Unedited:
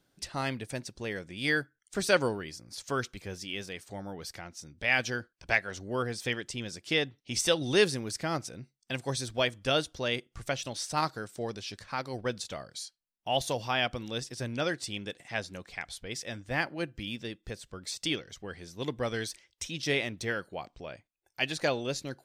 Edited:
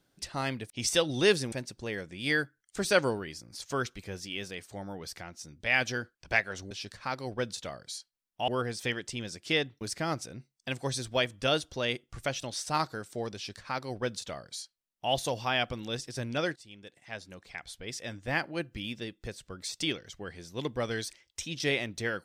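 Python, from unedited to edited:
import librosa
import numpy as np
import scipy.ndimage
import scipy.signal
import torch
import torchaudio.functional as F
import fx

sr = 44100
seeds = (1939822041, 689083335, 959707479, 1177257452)

y = fx.edit(x, sr, fx.move(start_s=7.22, length_s=0.82, to_s=0.7),
    fx.duplicate(start_s=11.58, length_s=1.77, to_s=5.89),
    fx.fade_in_from(start_s=14.79, length_s=1.62, floor_db=-17.5), tone=tone)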